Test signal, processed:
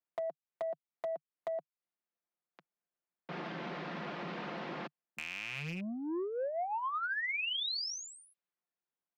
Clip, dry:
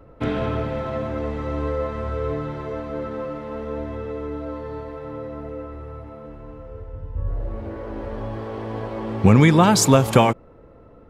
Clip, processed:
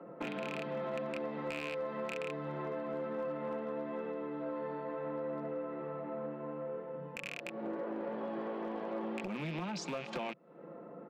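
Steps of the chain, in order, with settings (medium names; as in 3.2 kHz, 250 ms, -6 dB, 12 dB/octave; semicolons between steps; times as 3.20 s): rattle on loud lows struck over -24 dBFS, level -12 dBFS; level-controlled noise filter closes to 1.7 kHz, open at -15 dBFS; steep high-pass 150 Hz 72 dB/octave; peaking EQ 690 Hz +2 dB 0.24 oct; compression 10:1, threshold -35 dBFS; low-pass 5.4 kHz 24 dB/octave; comb 5.7 ms, depth 34%; overload inside the chain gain 30 dB; transformer saturation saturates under 300 Hz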